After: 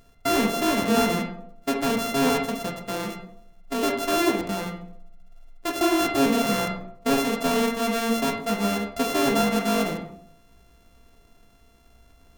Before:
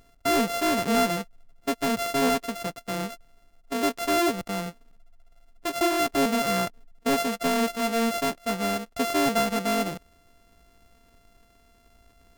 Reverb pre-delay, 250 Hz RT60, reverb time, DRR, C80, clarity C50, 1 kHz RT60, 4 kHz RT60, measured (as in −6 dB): 13 ms, 0.75 s, 0.65 s, 1.5 dB, 10.0 dB, 6.5 dB, 0.60 s, 0.40 s